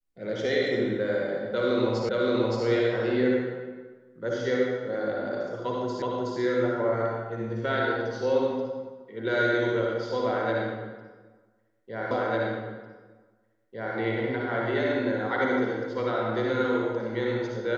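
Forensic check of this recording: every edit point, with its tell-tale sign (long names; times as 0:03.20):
0:02.09: the same again, the last 0.57 s
0:06.02: the same again, the last 0.37 s
0:12.11: the same again, the last 1.85 s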